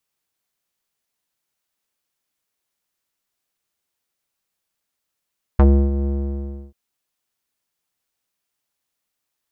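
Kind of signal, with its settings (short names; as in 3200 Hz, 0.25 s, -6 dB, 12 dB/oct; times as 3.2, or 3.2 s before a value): synth note square C#2 12 dB/oct, low-pass 390 Hz, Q 1.4, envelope 2 oct, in 0.06 s, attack 3.6 ms, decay 0.31 s, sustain -11 dB, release 0.67 s, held 0.47 s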